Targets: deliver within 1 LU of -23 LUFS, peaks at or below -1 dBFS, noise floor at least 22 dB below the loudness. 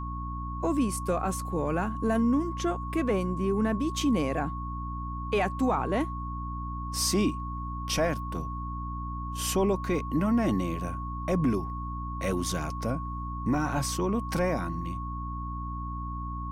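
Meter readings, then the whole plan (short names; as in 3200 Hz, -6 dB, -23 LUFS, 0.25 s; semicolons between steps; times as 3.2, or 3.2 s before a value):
hum 60 Hz; harmonics up to 300 Hz; hum level -33 dBFS; steady tone 1100 Hz; tone level -37 dBFS; loudness -30.0 LUFS; peak -15.5 dBFS; loudness target -23.0 LUFS
-> de-hum 60 Hz, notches 5; notch 1100 Hz, Q 30; gain +7 dB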